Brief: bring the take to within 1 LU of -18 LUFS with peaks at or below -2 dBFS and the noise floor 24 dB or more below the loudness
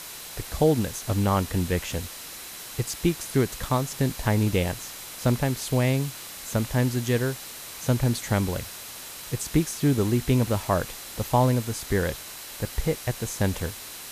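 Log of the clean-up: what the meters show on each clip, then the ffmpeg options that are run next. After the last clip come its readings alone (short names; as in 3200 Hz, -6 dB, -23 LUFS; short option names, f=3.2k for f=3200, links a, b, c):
steady tone 4000 Hz; tone level -51 dBFS; noise floor -40 dBFS; noise floor target -51 dBFS; loudness -26.5 LUFS; peak -9.0 dBFS; loudness target -18.0 LUFS
-> -af "bandreject=f=4k:w=30"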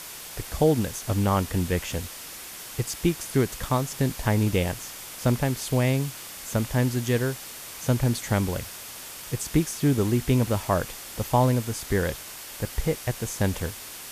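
steady tone none; noise floor -40 dBFS; noise floor target -51 dBFS
-> -af "afftdn=nr=11:nf=-40"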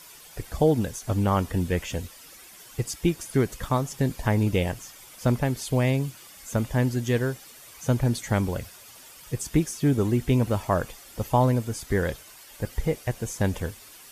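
noise floor -48 dBFS; noise floor target -51 dBFS
-> -af "afftdn=nr=6:nf=-48"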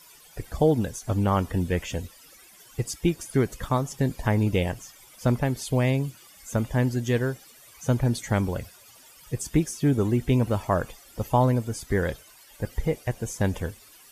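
noise floor -52 dBFS; loudness -26.5 LUFS; peak -9.5 dBFS; loudness target -18.0 LUFS
-> -af "volume=8.5dB,alimiter=limit=-2dB:level=0:latency=1"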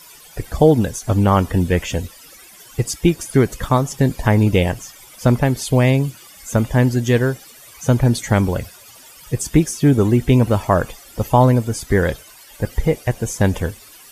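loudness -18.0 LUFS; peak -2.0 dBFS; noise floor -44 dBFS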